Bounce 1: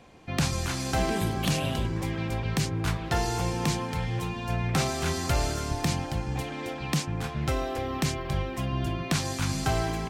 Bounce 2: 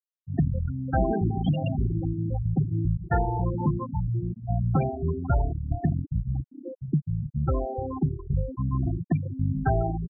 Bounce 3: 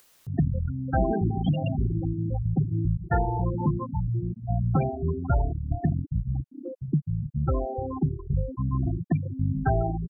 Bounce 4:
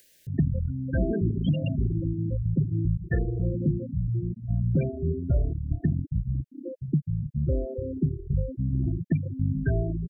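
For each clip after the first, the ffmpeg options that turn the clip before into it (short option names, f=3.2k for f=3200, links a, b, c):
-af "afftfilt=real='re*gte(hypot(re,im),0.126)':imag='im*gte(hypot(re,im),0.126)':win_size=1024:overlap=0.75,volume=4dB"
-af "acompressor=mode=upward:threshold=-31dB:ratio=2.5"
-af "asuperstop=centerf=1000:order=20:qfactor=1.1"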